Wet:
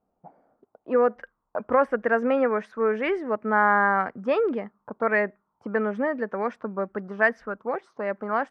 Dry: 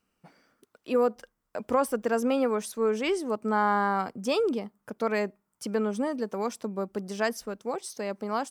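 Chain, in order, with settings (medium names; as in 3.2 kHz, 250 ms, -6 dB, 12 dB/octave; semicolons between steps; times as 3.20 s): dynamic bell 590 Hz, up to +5 dB, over -38 dBFS, Q 2.3; touch-sensitive low-pass 730–1800 Hz up, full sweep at -26.5 dBFS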